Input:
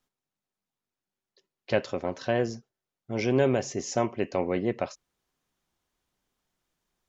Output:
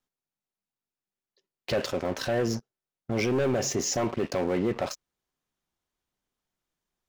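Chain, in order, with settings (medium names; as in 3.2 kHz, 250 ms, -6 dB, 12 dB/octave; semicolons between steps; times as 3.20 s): waveshaping leveller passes 3; peak limiter -20 dBFS, peak gain reduction 10.5 dB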